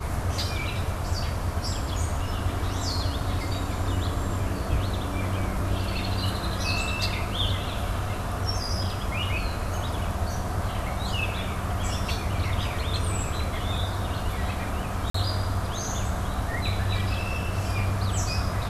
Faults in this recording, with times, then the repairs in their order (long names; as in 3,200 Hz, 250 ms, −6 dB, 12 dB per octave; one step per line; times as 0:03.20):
0:15.10–0:15.14: drop-out 44 ms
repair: repair the gap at 0:15.10, 44 ms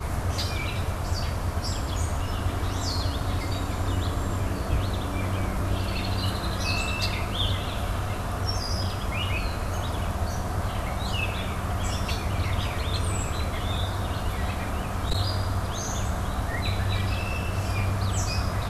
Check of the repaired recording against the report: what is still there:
none of them is left